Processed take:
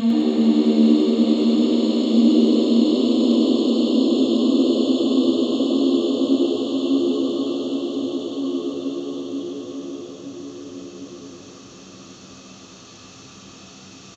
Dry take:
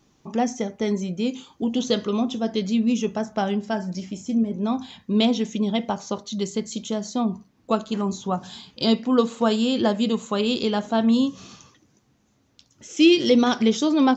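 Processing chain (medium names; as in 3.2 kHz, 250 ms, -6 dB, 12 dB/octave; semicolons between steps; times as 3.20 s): Paulstretch 40×, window 0.25 s, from 11.09 s; frequency-shifting echo 103 ms, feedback 50%, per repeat +75 Hz, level -3.5 dB; trim -1 dB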